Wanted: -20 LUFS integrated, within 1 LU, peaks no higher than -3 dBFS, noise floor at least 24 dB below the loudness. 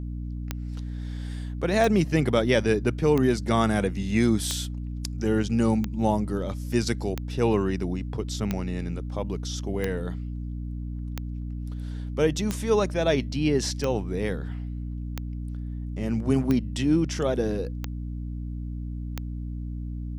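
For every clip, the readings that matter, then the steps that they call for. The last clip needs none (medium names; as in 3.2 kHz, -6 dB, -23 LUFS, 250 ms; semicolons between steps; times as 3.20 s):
clicks found 15; hum 60 Hz; highest harmonic 300 Hz; hum level -30 dBFS; loudness -27.0 LUFS; peak level -7.5 dBFS; loudness target -20.0 LUFS
-> de-click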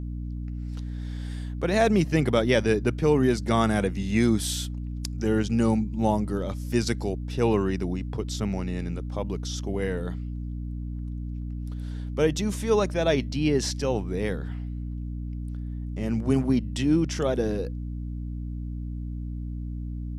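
clicks found 0; hum 60 Hz; highest harmonic 300 Hz; hum level -30 dBFS
-> hum notches 60/120/180/240/300 Hz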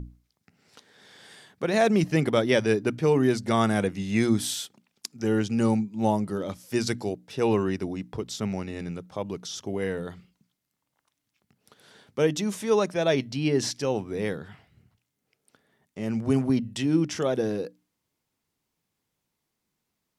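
hum not found; loudness -26.5 LUFS; peak level -8.5 dBFS; loudness target -20.0 LUFS
-> trim +6.5 dB; peak limiter -3 dBFS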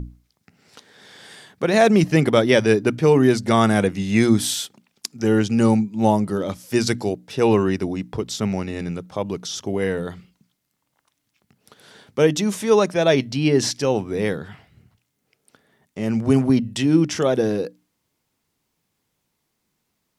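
loudness -20.0 LUFS; peak level -3.0 dBFS; noise floor -75 dBFS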